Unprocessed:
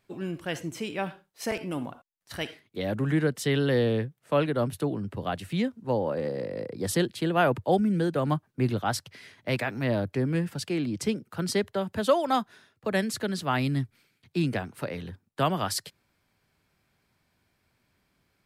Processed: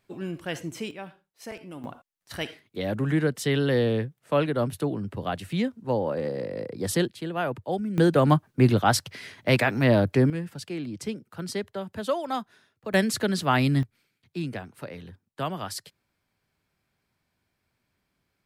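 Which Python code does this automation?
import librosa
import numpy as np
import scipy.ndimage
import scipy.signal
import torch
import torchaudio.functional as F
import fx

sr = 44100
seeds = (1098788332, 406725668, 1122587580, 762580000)

y = fx.gain(x, sr, db=fx.steps((0.0, 0.0), (0.91, -8.5), (1.84, 1.0), (7.08, -5.5), (7.98, 7.0), (10.3, -4.5), (12.94, 4.5), (13.83, -5.0)))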